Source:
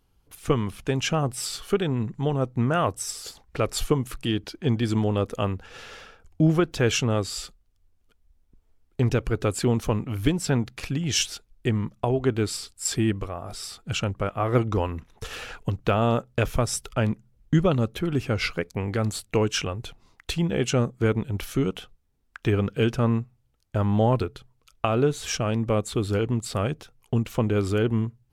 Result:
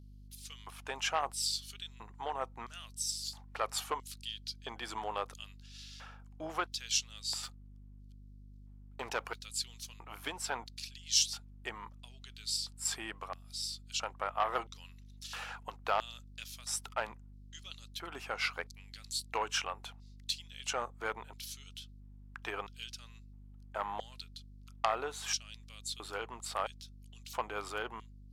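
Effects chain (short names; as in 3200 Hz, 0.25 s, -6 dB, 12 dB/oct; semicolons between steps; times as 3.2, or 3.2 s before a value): 7.43–9.39 sample leveller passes 1; LFO high-pass square 0.75 Hz 880–4300 Hz; hum 50 Hz, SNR 13 dB; core saturation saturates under 2400 Hz; gain -6.5 dB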